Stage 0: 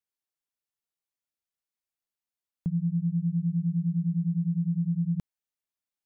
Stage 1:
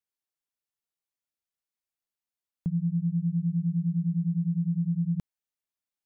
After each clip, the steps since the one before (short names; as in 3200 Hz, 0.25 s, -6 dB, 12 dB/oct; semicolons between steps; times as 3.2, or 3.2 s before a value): nothing audible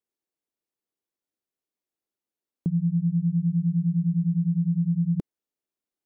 bell 340 Hz +14.5 dB 1.8 oct; gain -3 dB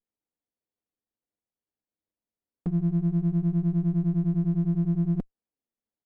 comb 4.1 ms, depth 49%; envelope flanger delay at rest 9.7 ms, full sweep at -21 dBFS; running maximum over 33 samples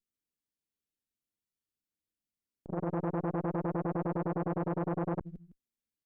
bell 770 Hz -14 dB 1.5 oct; feedback echo 0.158 s, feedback 20%, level -15 dB; core saturation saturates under 720 Hz